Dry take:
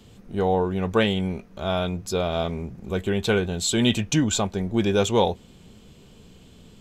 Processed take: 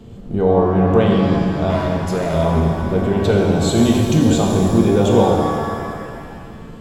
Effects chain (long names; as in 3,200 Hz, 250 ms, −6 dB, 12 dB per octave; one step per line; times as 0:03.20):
tilt shelving filter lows +7.5 dB, about 1,400 Hz
in parallel at −3 dB: compressor whose output falls as the input rises −22 dBFS
0:01.70–0:02.34: on the sum: hard clipping −16.5 dBFS, distortion −17 dB
reverb with rising layers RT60 2.3 s, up +7 semitones, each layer −8 dB, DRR −0.5 dB
level −3.5 dB